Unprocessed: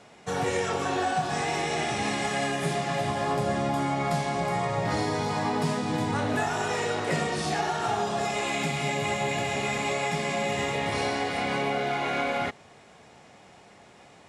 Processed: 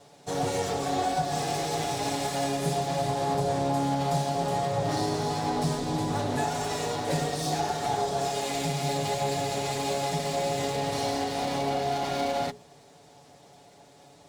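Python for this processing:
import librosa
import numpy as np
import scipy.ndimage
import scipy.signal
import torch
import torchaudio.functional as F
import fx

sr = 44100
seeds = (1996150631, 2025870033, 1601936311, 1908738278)

y = fx.lower_of_two(x, sr, delay_ms=7.0)
y = scipy.signal.sosfilt(scipy.signal.butter(2, 48.0, 'highpass', fs=sr, output='sos'), y)
y = fx.band_shelf(y, sr, hz=1800.0, db=-8.5, octaves=1.7)
y = fx.hum_notches(y, sr, base_hz=60, count=7)
y = y * 10.0 ** (2.0 / 20.0)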